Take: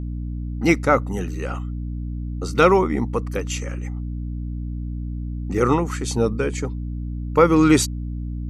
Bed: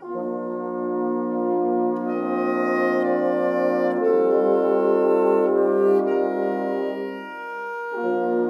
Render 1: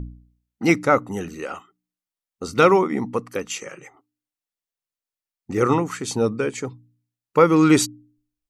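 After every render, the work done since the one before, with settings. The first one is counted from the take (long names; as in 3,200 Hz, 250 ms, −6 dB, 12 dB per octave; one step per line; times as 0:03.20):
hum removal 60 Hz, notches 5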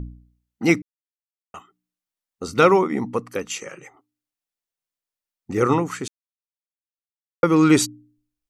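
0:00.82–0:01.54: silence
0:06.08–0:07.43: silence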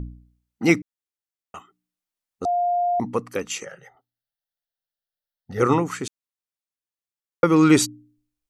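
0:02.45–0:03.00: beep over 705 Hz −18.5 dBFS
0:03.65–0:05.60: phaser with its sweep stopped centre 1,600 Hz, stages 8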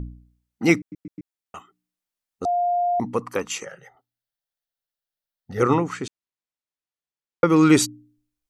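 0:00.79: stutter in place 0.13 s, 4 plays
0:03.20–0:03.69: parametric band 990 Hz +15 dB → +3 dB
0:05.63–0:07.50: high-frequency loss of the air 63 metres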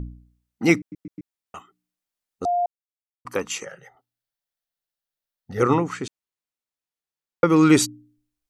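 0:02.66–0:03.25: silence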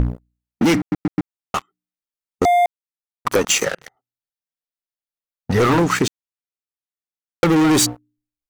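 leveller curve on the samples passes 5
downward compressor, threshold −14 dBFS, peak gain reduction 8 dB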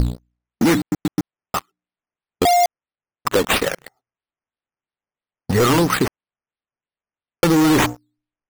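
sample-and-hold swept by an LFO 9×, swing 60% 3 Hz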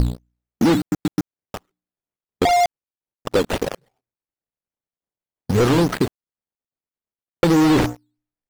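running median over 41 samples
slew-rate limiting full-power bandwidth 610 Hz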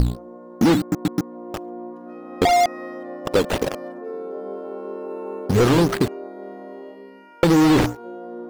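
mix in bed −13 dB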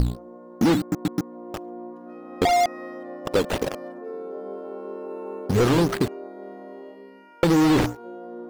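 level −3 dB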